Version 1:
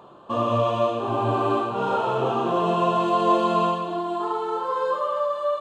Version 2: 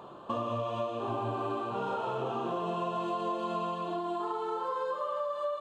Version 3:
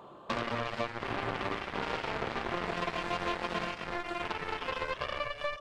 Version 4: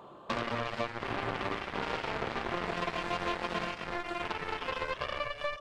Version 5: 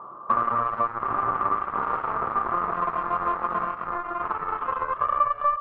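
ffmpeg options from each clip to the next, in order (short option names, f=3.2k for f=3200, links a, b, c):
-af "acompressor=threshold=-31dB:ratio=6"
-af "aeval=exprs='0.0944*(cos(1*acos(clip(val(0)/0.0944,-1,1)))-cos(1*PI/2))+0.0237*(cos(7*acos(clip(val(0)/0.0944,-1,1)))-cos(7*PI/2))':c=same"
-af anull
-af "lowpass=f=1.2k:t=q:w=9.1"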